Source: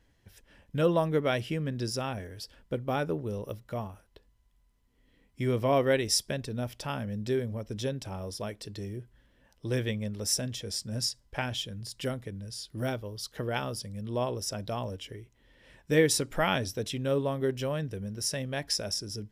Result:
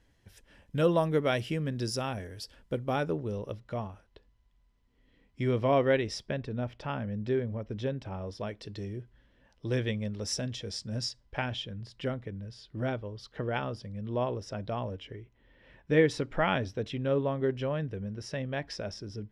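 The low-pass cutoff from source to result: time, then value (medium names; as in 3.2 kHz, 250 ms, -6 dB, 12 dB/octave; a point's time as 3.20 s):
2.79 s 12 kHz
3.43 s 5 kHz
5.42 s 5 kHz
6.28 s 2.6 kHz
8.09 s 2.6 kHz
8.78 s 5 kHz
11.00 s 5 kHz
11.81 s 2.8 kHz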